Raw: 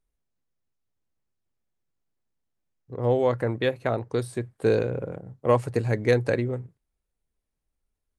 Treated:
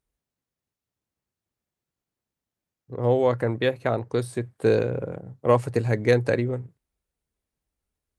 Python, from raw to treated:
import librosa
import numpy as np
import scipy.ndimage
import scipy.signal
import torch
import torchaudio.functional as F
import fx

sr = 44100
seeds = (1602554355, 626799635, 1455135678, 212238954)

y = scipy.signal.sosfilt(scipy.signal.butter(2, 46.0, 'highpass', fs=sr, output='sos'), x)
y = F.gain(torch.from_numpy(y), 1.5).numpy()